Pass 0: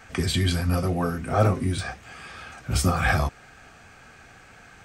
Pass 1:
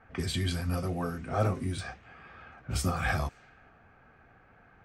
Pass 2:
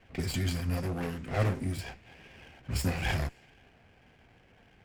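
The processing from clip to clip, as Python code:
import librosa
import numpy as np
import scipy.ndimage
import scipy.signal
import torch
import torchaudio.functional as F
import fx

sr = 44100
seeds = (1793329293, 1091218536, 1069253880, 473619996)

y1 = fx.env_lowpass(x, sr, base_hz=1300.0, full_db=-22.0)
y1 = F.gain(torch.from_numpy(y1), -7.5).numpy()
y2 = fx.lower_of_two(y1, sr, delay_ms=0.4)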